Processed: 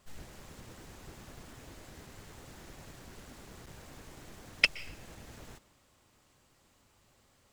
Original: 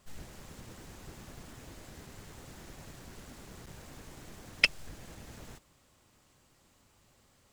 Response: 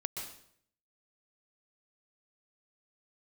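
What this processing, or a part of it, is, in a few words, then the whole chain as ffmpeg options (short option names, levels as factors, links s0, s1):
filtered reverb send: -filter_complex "[0:a]asplit=2[s0][s1];[s1]highpass=f=160:w=0.5412,highpass=f=160:w=1.3066,lowpass=5700[s2];[1:a]atrim=start_sample=2205[s3];[s2][s3]afir=irnorm=-1:irlink=0,volume=0.178[s4];[s0][s4]amix=inputs=2:normalize=0,volume=0.841"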